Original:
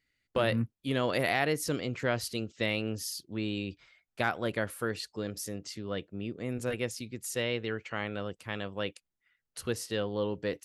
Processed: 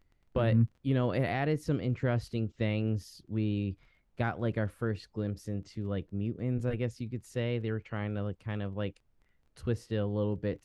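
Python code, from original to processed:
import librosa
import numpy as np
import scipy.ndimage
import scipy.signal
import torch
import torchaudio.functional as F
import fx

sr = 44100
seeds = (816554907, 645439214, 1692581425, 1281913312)

y = fx.dmg_crackle(x, sr, seeds[0], per_s=16.0, level_db=-42.0)
y = fx.riaa(y, sr, side='playback')
y = fx.dmg_noise_colour(y, sr, seeds[1], colour='brown', level_db=-67.0)
y = F.gain(torch.from_numpy(y), -4.5).numpy()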